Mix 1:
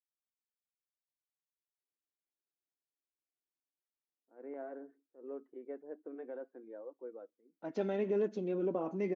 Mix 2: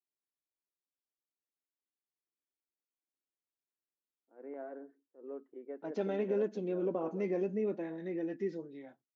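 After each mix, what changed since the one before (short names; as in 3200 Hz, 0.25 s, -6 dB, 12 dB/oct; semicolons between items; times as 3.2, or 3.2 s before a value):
second voice: entry -1.80 s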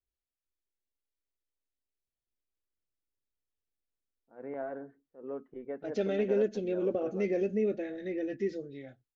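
second voice: add fixed phaser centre 400 Hz, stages 4; master: remove ladder high-pass 260 Hz, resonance 45%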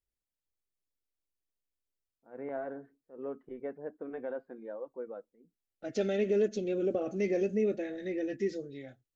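first voice: entry -2.05 s; master: remove air absorption 110 m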